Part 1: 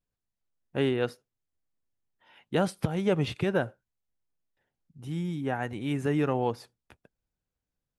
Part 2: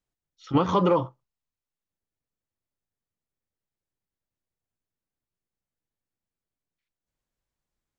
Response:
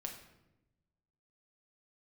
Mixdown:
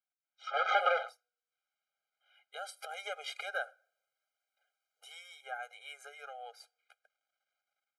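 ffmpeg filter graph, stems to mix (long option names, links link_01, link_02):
-filter_complex "[0:a]acompressor=threshold=-26dB:ratio=6,volume=-8dB,afade=type=in:start_time=2.47:duration=0.52:silence=0.316228,afade=type=out:start_time=4.94:duration=0.68:silence=0.446684,asplit=2[link_01][link_02];[link_02]volume=-24dB[link_03];[1:a]aeval=exprs='if(lt(val(0),0),0.251*val(0),val(0))':channel_layout=same,lowpass=2900,acompressor=threshold=-24dB:ratio=6,volume=1.5dB[link_04];[2:a]atrim=start_sample=2205[link_05];[link_03][link_05]afir=irnorm=-1:irlink=0[link_06];[link_01][link_04][link_06]amix=inputs=3:normalize=0,highpass=frequency=780:width=0.5412,highpass=frequency=780:width=1.3066,dynaudnorm=framelen=230:gausssize=3:maxgain=12dB,afftfilt=real='re*eq(mod(floor(b*sr/1024/410),2),1)':imag='im*eq(mod(floor(b*sr/1024/410),2),1)':win_size=1024:overlap=0.75"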